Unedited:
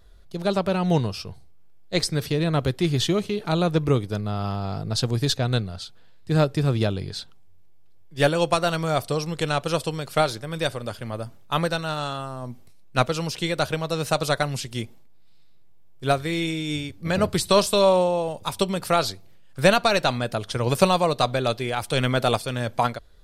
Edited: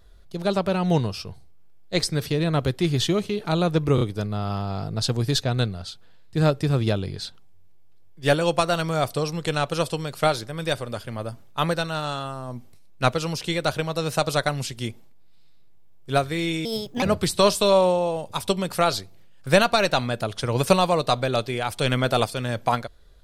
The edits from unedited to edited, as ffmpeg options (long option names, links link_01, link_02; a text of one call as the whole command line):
ffmpeg -i in.wav -filter_complex "[0:a]asplit=5[link_01][link_02][link_03][link_04][link_05];[link_01]atrim=end=3.982[link_06];[link_02]atrim=start=3.948:end=3.982[link_07];[link_03]atrim=start=3.948:end=16.594[link_08];[link_04]atrim=start=16.59:end=17.14,asetpts=PTS-STARTPTS,asetrate=64827,aresample=44100[link_09];[link_05]atrim=start=17.136[link_10];[link_06][link_07]acrossfade=duration=0.004:curve1=hsin:curve2=hsin[link_11];[link_11][link_08]acrossfade=duration=0.004:curve1=hsin:curve2=hsin[link_12];[link_12][link_09]acrossfade=duration=0.004:curve1=hsin:curve2=hsin[link_13];[link_13][link_10]acrossfade=duration=0.004:curve1=hsin:curve2=hsin" out.wav